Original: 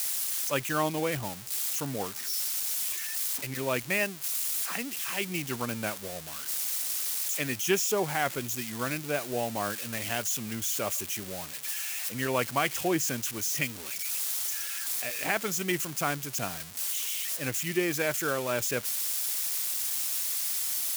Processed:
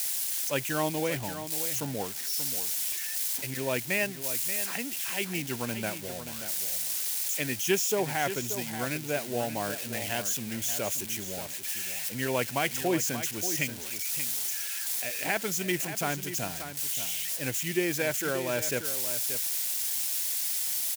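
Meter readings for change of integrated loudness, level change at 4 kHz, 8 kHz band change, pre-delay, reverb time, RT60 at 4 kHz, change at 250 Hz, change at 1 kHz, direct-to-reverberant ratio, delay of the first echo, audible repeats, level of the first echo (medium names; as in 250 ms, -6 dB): 0.0 dB, +0.5 dB, +0.5 dB, no reverb, no reverb, no reverb, +0.5 dB, -1.5 dB, no reverb, 581 ms, 1, -10.5 dB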